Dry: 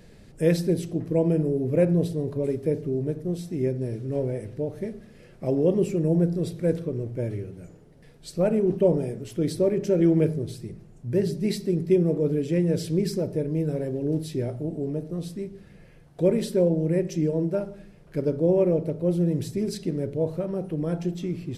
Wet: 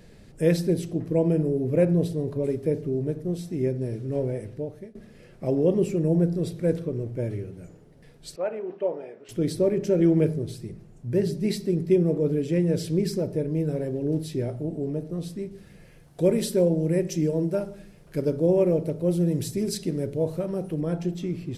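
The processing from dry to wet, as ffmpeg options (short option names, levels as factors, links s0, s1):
-filter_complex "[0:a]asettb=1/sr,asplit=3[s0][s1][s2];[s0]atrim=end=8.364[s3];[s1]atrim=start=8.36:end=9.29,asetpts=PTS-STARTPTS,afade=t=in:d=0.004:c=qsin,afade=t=out:st=0.926:d=0.004:c=qsin,highpass=650,lowpass=2400[s4];[s2]atrim=start=9.286[s5];[s3][s4]acrossfade=d=0.004:c1=hsin:c2=qsin[s6];[s6][s5]acrossfade=d=0.004:c1=qsin:c2=hsin,asettb=1/sr,asplit=3[s7][s8][s9];[s7]atrim=end=15.514[s10];[s8]atrim=start=15.51:end=20.81,asetpts=PTS-STARTPTS,afade=t=in:d=0.004:c=qsin,afade=t=out:st=5.296:d=0.004:c=qsin,highshelf=f=4700:g=9[s11];[s9]atrim=start=20.806[s12];[s10][s11]acrossfade=d=0.004:c1=hsin:c2=qsin[s13];[s13][s12]acrossfade=d=0.004:c1=qsin:c2=hsin,asplit=2[s14][s15];[s14]atrim=end=4.95,asetpts=PTS-STARTPTS,afade=t=out:st=4.27:d=0.68:c=qsin:silence=0.0944061[s16];[s15]atrim=start=4.95,asetpts=PTS-STARTPTS,afade=t=in:d=0.004:c=hsin:silence=0.0944061[s17];[s16][s17]concat=n=2:v=0:a=1"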